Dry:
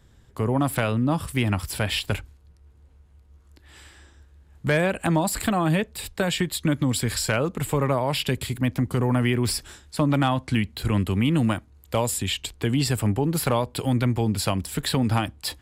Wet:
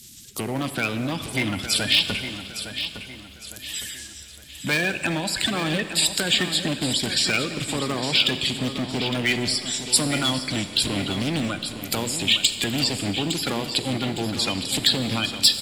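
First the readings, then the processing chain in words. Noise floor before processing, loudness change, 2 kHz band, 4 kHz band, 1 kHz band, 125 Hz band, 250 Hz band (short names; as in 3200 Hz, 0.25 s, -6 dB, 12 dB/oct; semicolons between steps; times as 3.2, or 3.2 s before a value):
-55 dBFS, +1.5 dB, +4.5 dB, +10.5 dB, -4.0 dB, -7.0 dB, -2.5 dB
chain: bin magnitudes rounded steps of 30 dB; treble ducked by the level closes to 2600 Hz, closed at -23.5 dBFS; EQ curve 270 Hz 0 dB, 1000 Hz -15 dB, 3400 Hz +4 dB; in parallel at +1 dB: compressor, threshold -38 dBFS, peak gain reduction 17.5 dB; on the sum: hard clip -19 dBFS, distortion -14 dB; tilt +3.5 dB/oct; on a send: feedback echo 0.86 s, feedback 39%, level -10 dB; on the sum: Schroeder reverb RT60 2.3 s, combs from 31 ms, DRR 10.5 dB; gain +4.5 dB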